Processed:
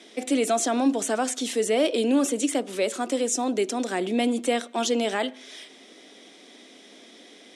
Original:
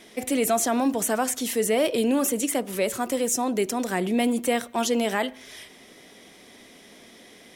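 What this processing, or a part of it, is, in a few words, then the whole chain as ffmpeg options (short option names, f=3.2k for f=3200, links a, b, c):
television speaker: -af "highpass=f=230:w=0.5412,highpass=f=230:w=1.3066,equalizer=f=290:t=q:w=4:g=4,equalizer=f=1k:t=q:w=4:g=-4,equalizer=f=1.9k:t=q:w=4:g=-3,equalizer=f=3.6k:t=q:w=4:g=4,lowpass=f=8.9k:w=0.5412,lowpass=f=8.9k:w=1.3066"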